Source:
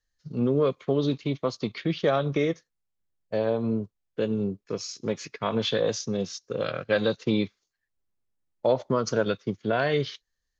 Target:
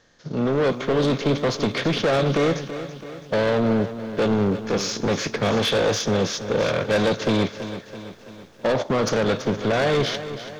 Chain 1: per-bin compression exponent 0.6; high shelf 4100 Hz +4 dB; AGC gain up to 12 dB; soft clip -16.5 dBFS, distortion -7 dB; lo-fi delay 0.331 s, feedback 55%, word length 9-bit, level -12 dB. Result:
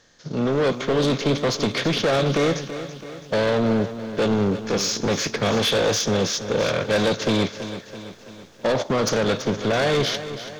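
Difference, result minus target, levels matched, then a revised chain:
8000 Hz band +4.0 dB
per-bin compression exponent 0.6; high shelf 4100 Hz -4 dB; AGC gain up to 12 dB; soft clip -16.5 dBFS, distortion -7 dB; lo-fi delay 0.331 s, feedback 55%, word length 9-bit, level -12 dB

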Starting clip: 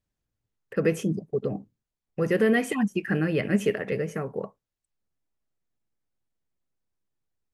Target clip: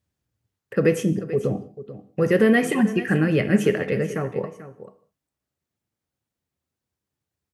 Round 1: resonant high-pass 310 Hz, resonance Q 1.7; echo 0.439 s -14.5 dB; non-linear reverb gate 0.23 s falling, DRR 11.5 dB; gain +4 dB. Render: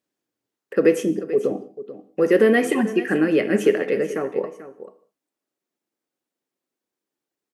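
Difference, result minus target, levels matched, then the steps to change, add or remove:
125 Hz band -11.5 dB
change: resonant high-pass 83 Hz, resonance Q 1.7

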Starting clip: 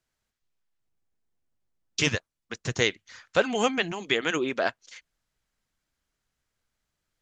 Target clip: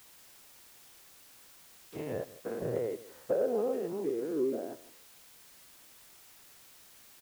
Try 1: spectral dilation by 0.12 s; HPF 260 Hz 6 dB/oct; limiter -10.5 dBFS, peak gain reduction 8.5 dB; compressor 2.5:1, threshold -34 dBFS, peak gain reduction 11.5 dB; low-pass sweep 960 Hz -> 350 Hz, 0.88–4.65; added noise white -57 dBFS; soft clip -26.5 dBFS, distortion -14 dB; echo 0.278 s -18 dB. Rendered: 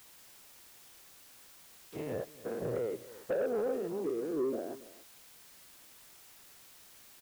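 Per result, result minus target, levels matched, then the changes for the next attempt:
echo 0.115 s late; soft clip: distortion +13 dB
change: echo 0.163 s -18 dB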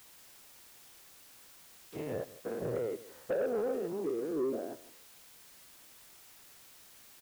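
soft clip: distortion +13 dB
change: soft clip -17.5 dBFS, distortion -27 dB

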